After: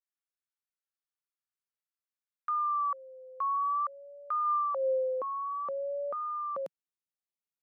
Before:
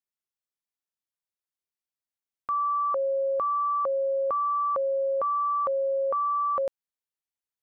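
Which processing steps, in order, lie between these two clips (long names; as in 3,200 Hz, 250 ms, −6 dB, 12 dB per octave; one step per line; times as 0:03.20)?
high-pass filter sweep 1,300 Hz → 170 Hz, 0:04.45–0:05.48
pitch vibrato 0.53 Hz 89 cents
level −9 dB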